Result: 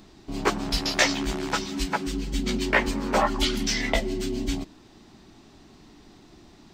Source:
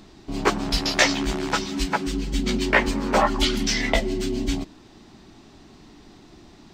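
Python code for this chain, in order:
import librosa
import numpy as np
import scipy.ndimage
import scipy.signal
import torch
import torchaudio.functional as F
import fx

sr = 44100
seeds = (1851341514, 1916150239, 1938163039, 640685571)

y = fx.high_shelf(x, sr, hz=11000.0, db=5.0)
y = y * 10.0 ** (-3.0 / 20.0)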